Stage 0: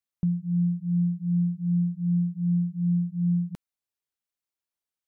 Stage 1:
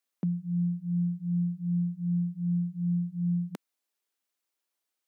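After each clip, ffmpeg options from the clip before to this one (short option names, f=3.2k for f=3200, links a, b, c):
-af "highpass=f=230:w=0.5412,highpass=f=230:w=1.3066,volume=6dB"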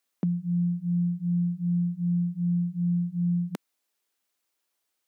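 -af "acompressor=threshold=-31dB:ratio=2,volume=5.5dB"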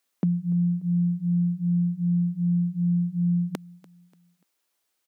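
-af "aecho=1:1:292|584|876:0.0841|0.0311|0.0115,volume=3dB"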